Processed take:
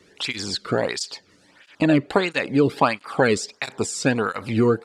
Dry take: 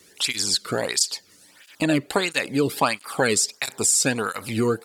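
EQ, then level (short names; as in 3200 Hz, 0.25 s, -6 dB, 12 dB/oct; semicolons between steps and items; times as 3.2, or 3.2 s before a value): tape spacing loss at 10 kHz 21 dB; +4.5 dB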